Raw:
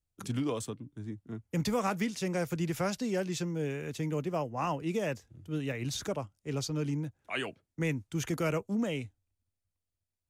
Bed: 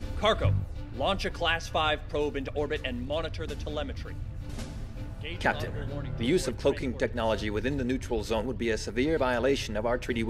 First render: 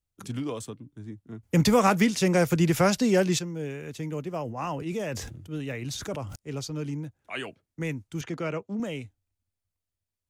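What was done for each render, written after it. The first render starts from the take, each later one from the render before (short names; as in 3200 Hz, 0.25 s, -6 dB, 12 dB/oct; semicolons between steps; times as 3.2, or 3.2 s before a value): 1.43–3.39 gain +10 dB; 4.4–6.36 sustainer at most 44 dB/s; 8.21–8.8 BPF 130–4500 Hz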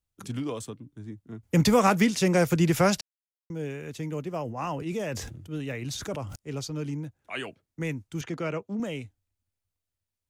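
3.01–3.5 mute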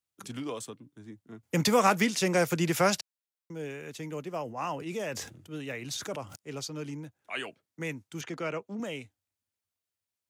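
HPF 120 Hz; low shelf 350 Hz -7.5 dB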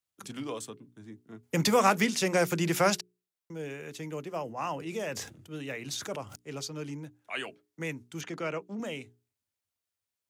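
notches 60/120/180/240/300/360/420 Hz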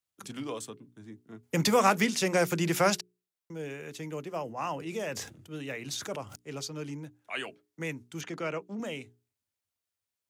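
nothing audible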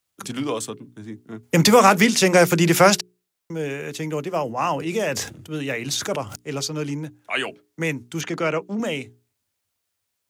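gain +11 dB; limiter -3 dBFS, peak gain reduction 3 dB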